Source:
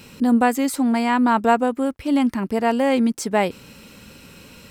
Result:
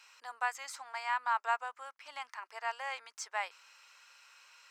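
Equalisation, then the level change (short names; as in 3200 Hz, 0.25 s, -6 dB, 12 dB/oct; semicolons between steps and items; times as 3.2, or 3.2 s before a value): inverse Chebyshev high-pass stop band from 220 Hz, stop band 70 dB; air absorption 220 m; resonant high shelf 5000 Hz +11 dB, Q 1.5; -6.5 dB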